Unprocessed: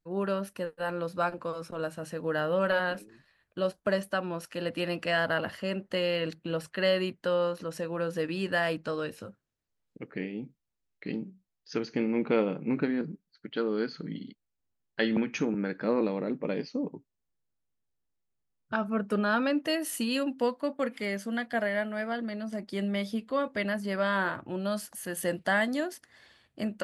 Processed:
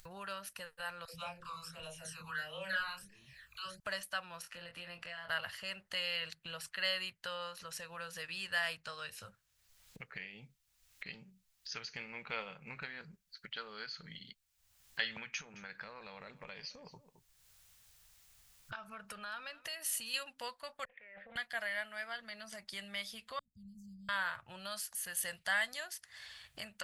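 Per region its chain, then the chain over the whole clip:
1.05–3.8 phaser stages 12, 1.5 Hz, lowest notch 540–1600 Hz + doubler 30 ms -3.5 dB + dispersion lows, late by 96 ms, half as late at 420 Hz
4.42–5.29 compressor 2.5:1, threshold -40 dBFS + high shelf 2800 Hz -10.5 dB + doubler 23 ms -6 dB
15.26–20.14 compressor, threshold -32 dBFS + echo 0.216 s -21 dB
20.85–21.36 vocal tract filter e + negative-ratio compressor -52 dBFS + Doppler distortion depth 0.24 ms
23.39–24.09 Chebyshev band-stop 200–6900 Hz, order 4 + air absorption 210 m + decimation joined by straight lines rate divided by 2×
whole clip: passive tone stack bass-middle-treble 10-0-10; upward compressor, threshold -42 dBFS; dynamic EQ 300 Hz, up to -7 dB, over -58 dBFS, Q 0.73; gain +1.5 dB

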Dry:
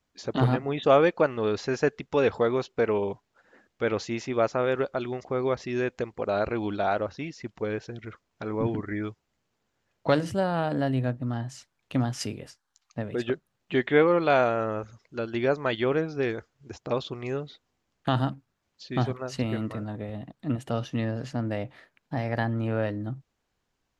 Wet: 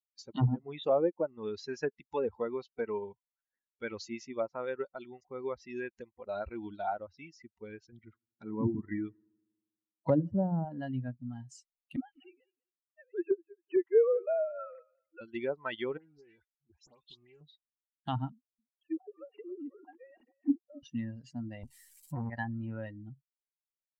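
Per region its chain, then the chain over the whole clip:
7.92–10.65 HPF 100 Hz + low shelf 490 Hz +5.5 dB + analogue delay 79 ms, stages 1024, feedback 81%, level -19.5 dB
11.96–15.21 sine-wave speech + warbling echo 0.198 s, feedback 33%, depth 68 cents, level -13 dB
15.97–17.41 compressor 4:1, threshold -36 dBFS + dispersion highs, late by 97 ms, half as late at 2400 Hz + Doppler distortion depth 0.22 ms
18.32–20.83 sine-wave speech + treble ducked by the level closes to 370 Hz, closed at -25.5 dBFS + echo 0.27 s -11.5 dB
21.63–22.3 switching spikes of -25.5 dBFS + tilt -3.5 dB/oct + core saturation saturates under 590 Hz
whole clip: per-bin expansion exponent 2; treble ducked by the level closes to 560 Hz, closed at -24.5 dBFS; gain -1.5 dB

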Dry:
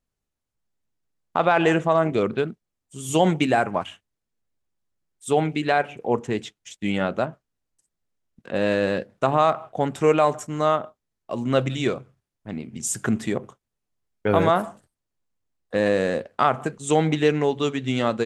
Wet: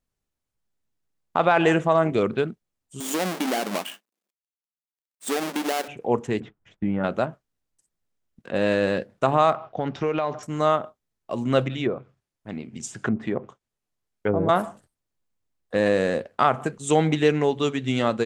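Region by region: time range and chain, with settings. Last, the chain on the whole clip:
3–5.88 half-waves squared off + compressor 4:1, threshold -23 dBFS + brick-wall FIR high-pass 180 Hz
6.4–7.04 compressor 3:1, threshold -28 dBFS + synth low-pass 1300 Hz, resonance Q 1.5 + low shelf 380 Hz +9.5 dB
9.56–10.43 steep low-pass 5800 Hz 48 dB/oct + compressor, threshold -20 dBFS
11.64–14.49 treble ducked by the level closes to 470 Hz, closed at -16.5 dBFS + low shelf 190 Hz -4.5 dB
whole clip: dry

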